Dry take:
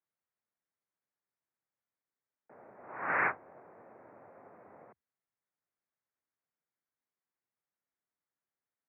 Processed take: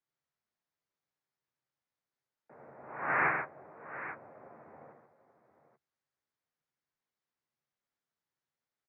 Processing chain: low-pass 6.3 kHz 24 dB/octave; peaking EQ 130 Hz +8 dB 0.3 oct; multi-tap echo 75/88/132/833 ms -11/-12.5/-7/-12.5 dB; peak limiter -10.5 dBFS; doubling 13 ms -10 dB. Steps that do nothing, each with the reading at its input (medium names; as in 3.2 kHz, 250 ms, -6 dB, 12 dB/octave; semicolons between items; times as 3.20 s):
low-pass 6.3 kHz: input has nothing above 2.7 kHz; peak limiter -10.5 dBFS: peak at its input -18.0 dBFS